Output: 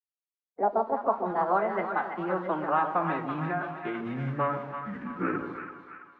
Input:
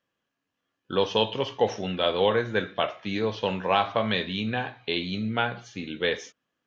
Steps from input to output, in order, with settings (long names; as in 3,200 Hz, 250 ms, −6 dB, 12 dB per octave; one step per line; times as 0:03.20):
gliding playback speed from 158% → 57%
downward compressor 1.5 to 1, threshold −29 dBFS, peak gain reduction 4.5 dB
high-frequency loss of the air 440 metres
bit-depth reduction 8 bits, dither none
low-shelf EQ 110 Hz −5 dB
phase-vocoder pitch shift with formants kept +6 semitones
echo with a time of its own for lows and highs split 840 Hz, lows 142 ms, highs 332 ms, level −7 dB
low-pass filter sweep 610 Hz → 1,400 Hz, 0:00.05–0:01.85